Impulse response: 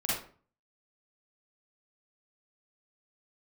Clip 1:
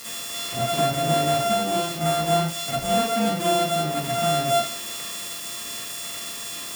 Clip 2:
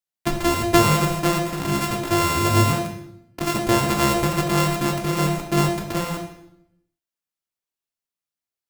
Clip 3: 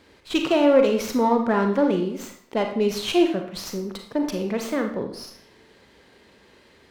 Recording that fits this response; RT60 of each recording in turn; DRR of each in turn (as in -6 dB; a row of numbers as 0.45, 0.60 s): 1; 0.45, 0.80, 0.60 s; -8.0, 2.5, 3.5 dB